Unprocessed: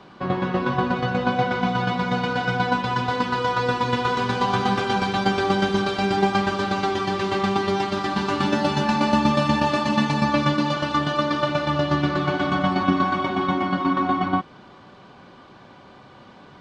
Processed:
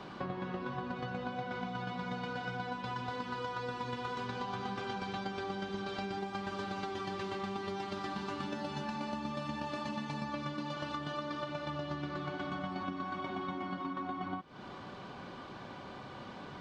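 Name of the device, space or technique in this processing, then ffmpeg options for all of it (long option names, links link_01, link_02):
serial compression, leveller first: -filter_complex "[0:a]asettb=1/sr,asplit=3[link_01][link_02][link_03];[link_01]atrim=end=4.274[link_04];[link_02]atrim=start=4.27:end=6.17,asetpts=PTS-STARTPTS,afade=type=in:duration=0.004:curve=qsin,afade=type=out:start_time=1.896:duration=0.004:curve=qsin,lowpass=7800[link_05];[link_03]atrim=start=6.166[link_06];[link_04][link_05]acrossfade=duration=0.004:curve1=hsin:curve2=qsin[link_07];[link_07][link_06]acrossfade=duration=0.004:curve1=qsin:curve2=hsin,acompressor=threshold=-27dB:ratio=2,acompressor=threshold=-38dB:ratio=4"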